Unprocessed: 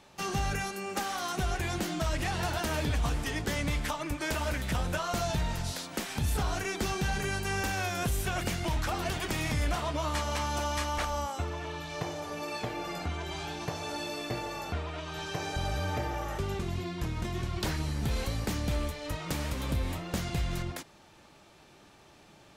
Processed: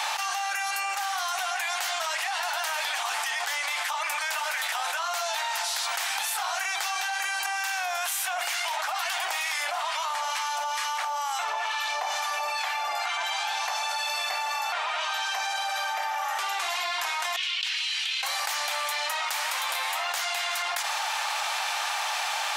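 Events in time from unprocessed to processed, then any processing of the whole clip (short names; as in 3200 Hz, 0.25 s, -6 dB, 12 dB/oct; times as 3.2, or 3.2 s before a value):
7.46–13.17 harmonic tremolo 2.2 Hz, crossover 840 Hz
17.36–18.23 ladder band-pass 3300 Hz, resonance 55%
whole clip: elliptic high-pass 760 Hz, stop band 80 dB; fast leveller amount 100%; gain +2 dB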